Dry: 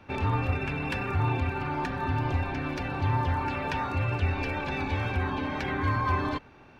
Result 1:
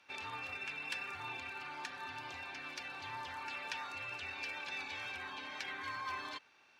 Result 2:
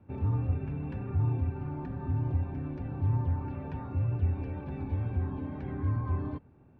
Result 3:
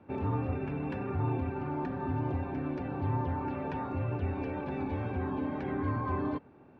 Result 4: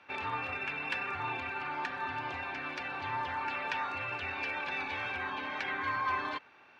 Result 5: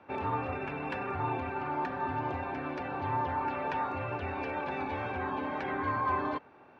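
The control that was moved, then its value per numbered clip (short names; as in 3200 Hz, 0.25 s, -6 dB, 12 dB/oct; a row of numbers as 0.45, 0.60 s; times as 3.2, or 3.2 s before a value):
band-pass, frequency: 6600, 110, 280, 2200, 710 Hz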